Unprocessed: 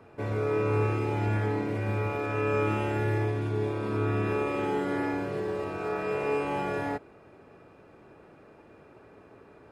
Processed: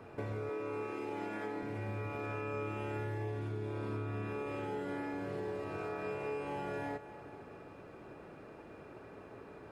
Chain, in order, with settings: 0.49–1.63 s: high-pass 210 Hz 24 dB/octave; compression 6:1, threshold -39 dBFS, peak gain reduction 15 dB; two-band feedback delay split 630 Hz, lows 421 ms, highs 238 ms, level -14 dB; trim +1.5 dB

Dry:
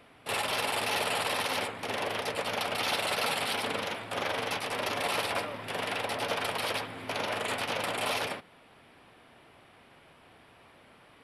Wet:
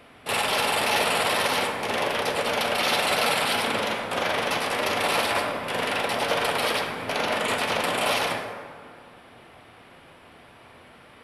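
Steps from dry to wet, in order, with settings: plate-style reverb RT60 2 s, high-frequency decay 0.45×, DRR 3 dB; trim +5.5 dB

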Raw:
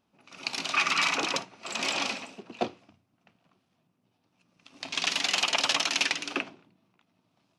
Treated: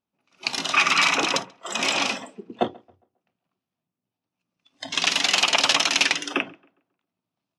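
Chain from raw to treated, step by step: spectral noise reduction 20 dB; tape echo 134 ms, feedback 37%, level -23 dB, low-pass 2.2 kHz; trim +6.5 dB

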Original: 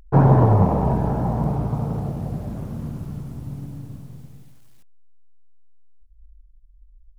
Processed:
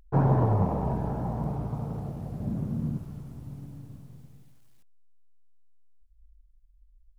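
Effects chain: 2.40–2.98 s: peaking EQ 190 Hz +10.5 dB 2 oct; trim -8.5 dB

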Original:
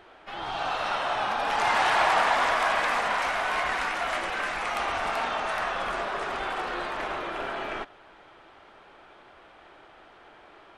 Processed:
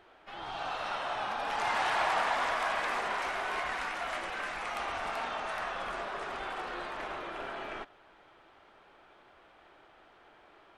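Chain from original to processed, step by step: 2.85–3.60 s: peaking EQ 380 Hz +9.5 dB 0.26 oct; trim -7 dB

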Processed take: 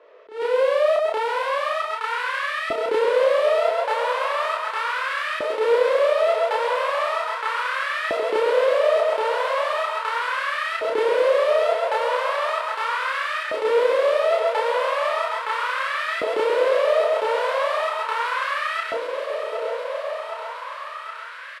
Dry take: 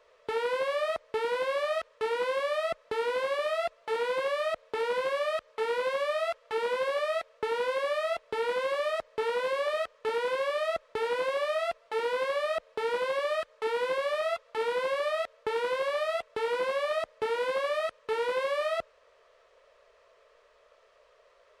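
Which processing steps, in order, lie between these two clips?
delay 132 ms -6.5 dB; compression 4:1, threshold -39 dBFS, peak gain reduction 12 dB; doubling 30 ms -2.5 dB; level rider gain up to 6 dB; level-controlled noise filter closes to 2.5 kHz, open at -31.5 dBFS; thinning echo 767 ms, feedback 79%, high-pass 200 Hz, level -9 dB; LFO high-pass saw up 0.37 Hz 310–1700 Hz; attacks held to a fixed rise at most 170 dB/s; trim +7 dB

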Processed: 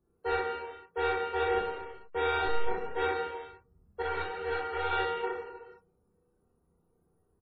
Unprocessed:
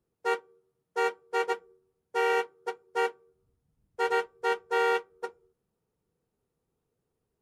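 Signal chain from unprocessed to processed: 1.51–2.97 s: send-on-delta sampling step -36.5 dBFS; bass shelf 180 Hz +5 dB; saturation -29.5 dBFS, distortion -8 dB; gated-style reverb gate 490 ms falling, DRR 0 dB; loudest bins only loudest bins 64; treble shelf 8.5 kHz +5.5 dB; on a send: loudspeakers at several distances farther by 10 m -2 dB, 22 m -1 dB; 4.02–4.93 s: on the sum: three-phase chorus

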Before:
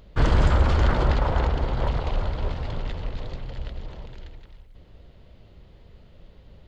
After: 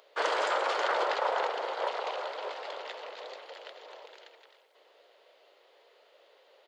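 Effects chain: steep high-pass 450 Hz 36 dB/octave; delay 855 ms -21.5 dB

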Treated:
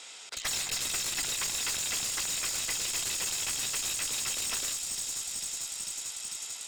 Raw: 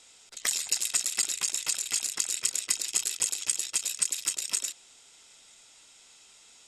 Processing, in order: feedback echo behind a high-pass 445 ms, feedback 75%, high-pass 4.7 kHz, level -8.5 dB; overdrive pedal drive 26 dB, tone 4 kHz, clips at -10 dBFS; one-sided clip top -26.5 dBFS; trim -7 dB

